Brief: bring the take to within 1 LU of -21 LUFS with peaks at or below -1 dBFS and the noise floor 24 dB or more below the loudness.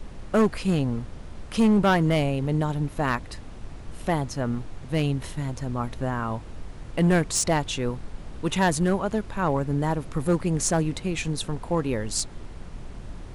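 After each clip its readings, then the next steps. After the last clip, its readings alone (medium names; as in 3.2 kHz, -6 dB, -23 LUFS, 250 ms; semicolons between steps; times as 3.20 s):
clipped samples 1.3%; clipping level -15.0 dBFS; noise floor -41 dBFS; noise floor target -50 dBFS; loudness -25.5 LUFS; peak level -15.0 dBFS; loudness target -21.0 LUFS
-> clip repair -15 dBFS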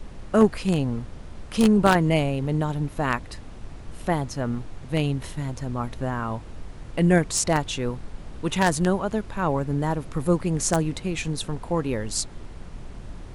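clipped samples 0.0%; noise floor -41 dBFS; noise floor target -49 dBFS
-> noise print and reduce 8 dB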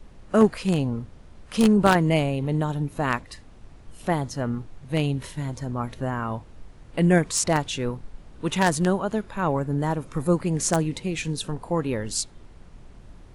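noise floor -48 dBFS; noise floor target -49 dBFS
-> noise print and reduce 6 dB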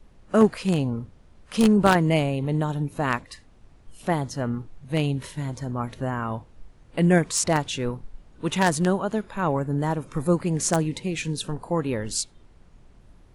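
noise floor -54 dBFS; loudness -25.0 LUFS; peak level -6.0 dBFS; loudness target -21.0 LUFS
-> trim +4 dB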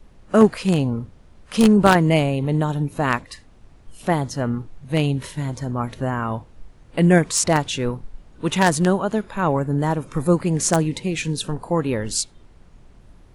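loudness -21.0 LUFS; peak level -2.0 dBFS; noise floor -50 dBFS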